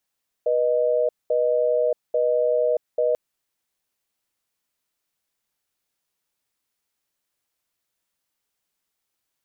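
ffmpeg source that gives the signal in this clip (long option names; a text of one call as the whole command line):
ffmpeg -f lavfi -i "aevalsrc='0.0944*(sin(2*PI*487*t)+sin(2*PI*618*t))*clip(min(mod(t,0.84),0.63-mod(t,0.84))/0.005,0,1)':duration=2.69:sample_rate=44100" out.wav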